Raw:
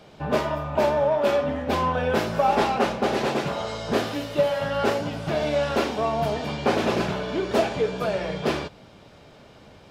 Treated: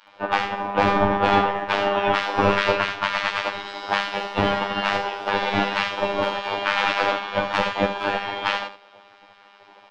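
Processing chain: octave divider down 2 oct, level -5 dB; low-pass 3.3 kHz 12 dB/octave; bass shelf 170 Hz +6.5 dB; spectral gate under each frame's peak -15 dB weak; robot voice 100 Hz; small resonant body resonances 570/840 Hz, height 12 dB, ringing for 65 ms; on a send: delay 75 ms -8.5 dB; on the sum: loudness maximiser +14.5 dB; upward expansion 1.5:1, over -32 dBFS

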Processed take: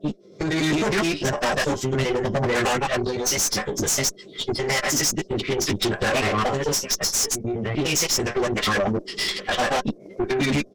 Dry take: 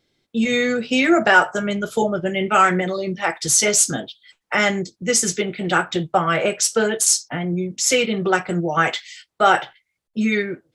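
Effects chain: slices played last to first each 102 ms, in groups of 4; band noise 170–630 Hz -56 dBFS; Butterworth band-stop 1.4 kHz, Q 4; peaking EQ 77 Hz -3 dB 0.21 oct; small resonant body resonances 300/580/1600 Hz, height 10 dB, ringing for 60 ms; in parallel at -4.5 dB: wavefolder -14 dBFS; on the sum: compression 8:1, threshold -23 dBFS, peak gain reduction 14.5 dB; peaking EQ 5.6 kHz +11 dB 0.55 oct; doubling 13 ms -3 dB; level rider gain up to 11 dB; formant-preserving pitch shift -7.5 st; valve stage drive 18 dB, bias 0.65

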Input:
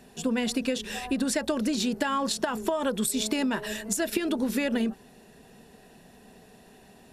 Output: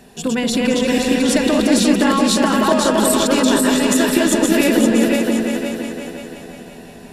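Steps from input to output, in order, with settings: backward echo that repeats 258 ms, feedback 59%, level -1 dB; on a send: delay with an opening low-pass 176 ms, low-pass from 750 Hz, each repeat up 2 oct, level -3 dB; on the sum: trim +7.5 dB

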